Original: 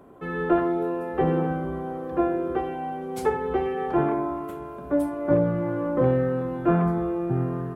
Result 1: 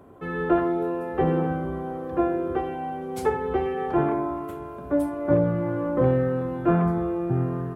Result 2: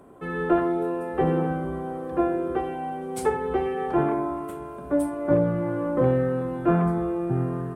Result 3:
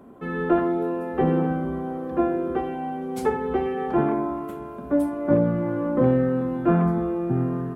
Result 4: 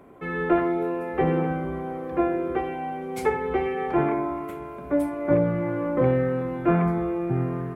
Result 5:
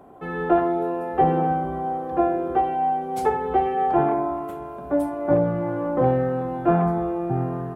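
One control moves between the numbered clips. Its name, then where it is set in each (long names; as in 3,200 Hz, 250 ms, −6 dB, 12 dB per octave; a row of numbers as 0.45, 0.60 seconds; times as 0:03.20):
parametric band, centre frequency: 91, 8,800, 230, 2,200, 760 Hertz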